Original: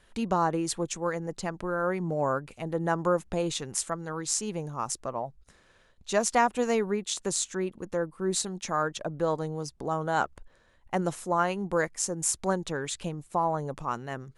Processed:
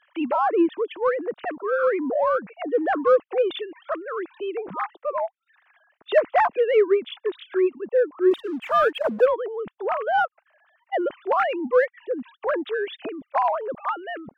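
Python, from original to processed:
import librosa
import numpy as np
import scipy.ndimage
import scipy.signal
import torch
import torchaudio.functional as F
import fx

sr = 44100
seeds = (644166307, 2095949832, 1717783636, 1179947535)

p1 = fx.sine_speech(x, sr)
p2 = fx.leveller(p1, sr, passes=1, at=(8.31, 9.26))
p3 = 10.0 ** (-28.0 / 20.0) * np.tanh(p2 / 10.0 ** (-28.0 / 20.0))
p4 = p2 + (p3 * librosa.db_to_amplitude(-11.5))
y = p4 * librosa.db_to_amplitude(5.0)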